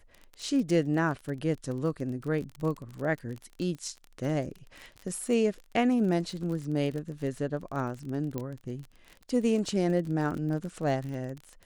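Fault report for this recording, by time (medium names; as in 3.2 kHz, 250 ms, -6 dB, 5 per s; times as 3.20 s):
crackle 32 per s -35 dBFS
8.38 s: pop -20 dBFS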